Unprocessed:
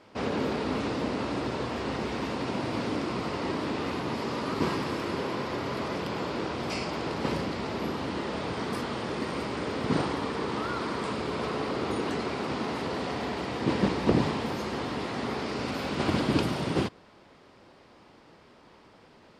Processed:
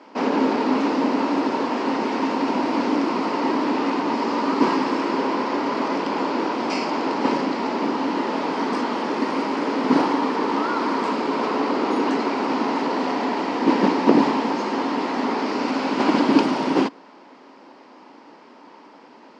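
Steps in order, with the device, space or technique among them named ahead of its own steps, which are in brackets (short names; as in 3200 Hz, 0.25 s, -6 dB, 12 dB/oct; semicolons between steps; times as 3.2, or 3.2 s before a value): television speaker (speaker cabinet 220–6700 Hz, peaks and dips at 270 Hz +8 dB, 920 Hz +8 dB, 3600 Hz -5 dB); gain +6.5 dB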